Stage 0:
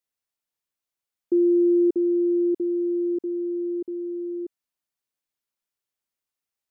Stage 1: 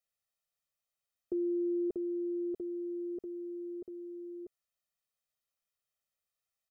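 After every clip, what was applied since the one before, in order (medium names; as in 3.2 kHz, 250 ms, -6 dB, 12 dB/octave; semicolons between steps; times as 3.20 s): comb 1.6 ms, depth 81%; trim -4.5 dB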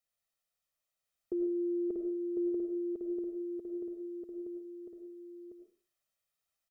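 dynamic bell 140 Hz, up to -4 dB, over -50 dBFS, Q 1.1; delay 1051 ms -4.5 dB; reverberation RT60 0.40 s, pre-delay 60 ms, DRR 4 dB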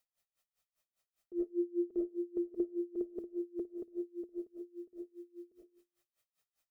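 de-hum 87.43 Hz, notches 4; logarithmic tremolo 5 Hz, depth 26 dB; trim +7.5 dB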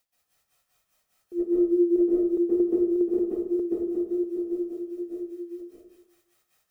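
plate-style reverb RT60 0.72 s, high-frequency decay 0.6×, pre-delay 115 ms, DRR -7.5 dB; trim +7.5 dB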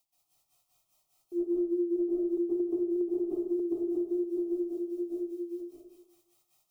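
compression 5:1, threshold -27 dBFS, peak gain reduction 9.5 dB; static phaser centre 330 Hz, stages 8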